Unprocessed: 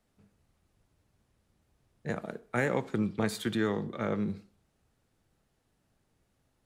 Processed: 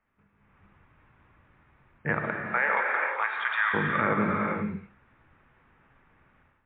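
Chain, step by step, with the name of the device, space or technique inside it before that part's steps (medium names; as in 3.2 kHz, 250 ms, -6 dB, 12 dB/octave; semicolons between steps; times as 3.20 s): high-order bell 1.5 kHz +11 dB; 2.35–3.73 s: high-pass 390 Hz -> 1.3 kHz 24 dB/octave; resonant high shelf 5.3 kHz +9 dB, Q 3; gated-style reverb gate 500 ms flat, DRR 2 dB; low-bitrate web radio (level rider gain up to 13 dB; peak limiter -8 dBFS, peak gain reduction 6.5 dB; trim -5 dB; MP3 40 kbps 8 kHz)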